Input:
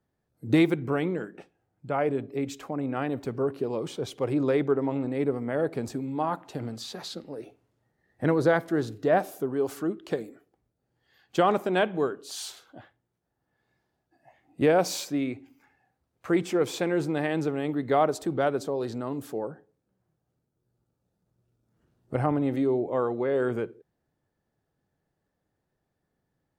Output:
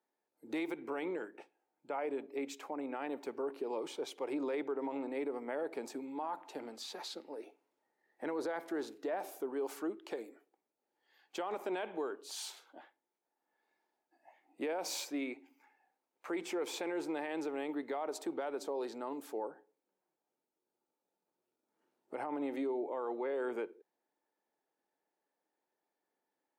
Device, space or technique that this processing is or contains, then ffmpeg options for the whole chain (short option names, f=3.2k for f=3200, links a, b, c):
laptop speaker: -af "highpass=f=290:w=0.5412,highpass=f=290:w=1.3066,equalizer=f=890:t=o:w=0.23:g=9,equalizer=f=2.3k:t=o:w=0.32:g=4.5,alimiter=limit=-23dB:level=0:latency=1:release=57,volume=-6.5dB"